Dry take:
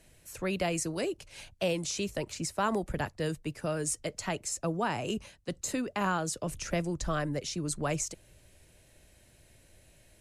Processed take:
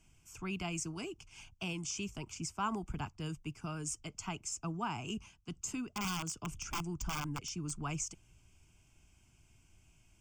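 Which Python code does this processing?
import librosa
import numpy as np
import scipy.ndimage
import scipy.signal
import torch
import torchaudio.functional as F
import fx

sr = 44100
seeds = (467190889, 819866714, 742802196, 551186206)

y = fx.overflow_wrap(x, sr, gain_db=24.0, at=(5.94, 7.69), fade=0.02)
y = fx.fixed_phaser(y, sr, hz=2700.0, stages=8)
y = y * 10.0 ** (-3.5 / 20.0)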